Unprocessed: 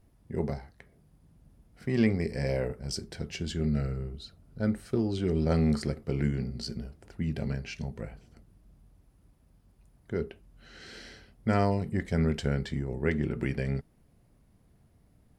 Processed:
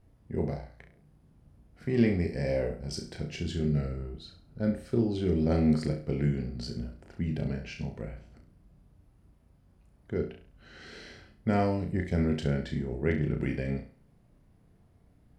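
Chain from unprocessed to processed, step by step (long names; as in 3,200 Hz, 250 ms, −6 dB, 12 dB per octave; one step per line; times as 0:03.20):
high-shelf EQ 4,700 Hz −8.5 dB
on a send: flutter between parallel walls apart 5.8 metres, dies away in 0.38 s
on the sum: dynamic equaliser 1,200 Hz, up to −5 dB, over −50 dBFS, Q 1.3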